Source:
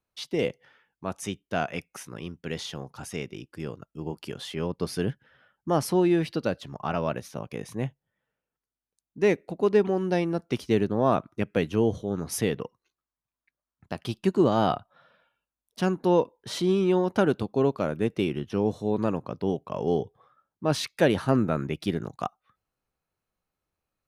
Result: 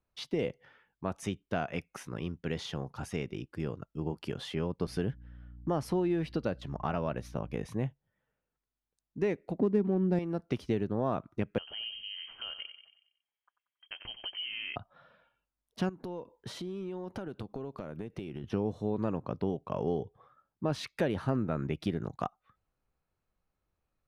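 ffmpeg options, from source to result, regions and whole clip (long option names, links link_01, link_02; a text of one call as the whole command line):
ffmpeg -i in.wav -filter_complex "[0:a]asettb=1/sr,asplit=3[link_01][link_02][link_03];[link_01]atrim=end=4.874[link_04];[link_02]atrim=start=4.87:end=7.66,asetpts=PTS-STARTPTS,afade=type=in:duration=0.004:curve=qsin,afade=type=out:start_time=2.786:duration=0.004:curve=qsin,agate=range=-7dB:threshold=-49dB:ratio=16:release=100:detection=peak,aeval=exprs='val(0)+0.00251*(sin(2*PI*60*n/s)+sin(2*PI*2*60*n/s)/2+sin(2*PI*3*60*n/s)/3+sin(2*PI*4*60*n/s)/4+sin(2*PI*5*60*n/s)/5)':channel_layout=same[link_05];[link_03]atrim=start=7.656[link_06];[link_04][link_05]acrossfade=duration=0.004:curve1=hsin:curve2=qsin[link_07];[link_07][link_06]acrossfade=duration=0.004:curve1=qsin:curve2=hsin,asettb=1/sr,asplit=3[link_08][link_09][link_10];[link_08]atrim=end=9.594[link_11];[link_09]atrim=start=9.59:end=10.19,asetpts=PTS-STARTPTS,afade=type=in:duration=0.004:curve=qsin,afade=type=out:start_time=0.596:duration=0.004:curve=qsin,adynamicsmooth=sensitivity=6.5:basefreq=1300,equalizer=frequency=220:width_type=o:width=1.5:gain=13[link_12];[link_10]atrim=start=10.186[link_13];[link_11][link_12]acrossfade=duration=0.004:curve1=hsin:curve2=qsin[link_14];[link_14][link_13]acrossfade=duration=0.004:curve1=qsin:curve2=hsin,asettb=1/sr,asplit=3[link_15][link_16][link_17];[link_15]atrim=end=11.584[link_18];[link_16]atrim=start=11.58:end=14.76,asetpts=PTS-STARTPTS,afade=type=in:duration=0.004:curve=qsin,afade=type=out:start_time=3.176:duration=0.004:curve=qsin,acompressor=threshold=-37dB:ratio=3:attack=3.2:release=140:knee=1:detection=peak,asplit=2[link_19][link_20];[link_20]adelay=92,lowpass=frequency=2400:poles=1,volume=-9dB,asplit=2[link_21][link_22];[link_22]adelay=92,lowpass=frequency=2400:poles=1,volume=0.51,asplit=2[link_23][link_24];[link_24]adelay=92,lowpass=frequency=2400:poles=1,volume=0.51,asplit=2[link_25][link_26];[link_26]adelay=92,lowpass=frequency=2400:poles=1,volume=0.51,asplit=2[link_27][link_28];[link_28]adelay=92,lowpass=frequency=2400:poles=1,volume=0.51,asplit=2[link_29][link_30];[link_30]adelay=92,lowpass=frequency=2400:poles=1,volume=0.51[link_31];[link_19][link_21][link_23][link_25][link_27][link_29][link_31]amix=inputs=7:normalize=0,atrim=end_sample=140238,lowpass=frequency=2800:width_type=q:width=0.5098,lowpass=frequency=2800:width_type=q:width=0.6013,lowpass=frequency=2800:width_type=q:width=0.9,lowpass=frequency=2800:width_type=q:width=2.563,afreqshift=-3300[link_32];[link_17]atrim=start=14.756[link_33];[link_18][link_32]acrossfade=duration=0.004:curve1=hsin:curve2=qsin[link_34];[link_34][link_33]acrossfade=duration=0.004:curve1=qsin:curve2=hsin,asettb=1/sr,asplit=3[link_35][link_36][link_37];[link_35]atrim=end=15.894[link_38];[link_36]atrim=start=15.89:end=18.44,asetpts=PTS-STARTPTS,afade=type=in:duration=0.004:curve=qsin,afade=type=out:start_time=2.546:duration=0.004:curve=qsin,highshelf=frequency=8100:gain=6,acompressor=threshold=-36dB:ratio=12:attack=3.2:release=140:knee=1:detection=peak[link_39];[link_37]atrim=start=18.436[link_40];[link_38][link_39]acrossfade=duration=0.004:curve1=hsin:curve2=qsin[link_41];[link_41][link_40]acrossfade=duration=0.004:curve1=qsin:curve2=hsin,lowshelf=frequency=79:gain=9,acompressor=threshold=-29dB:ratio=3,highshelf=frequency=4500:gain=-10.5" out.wav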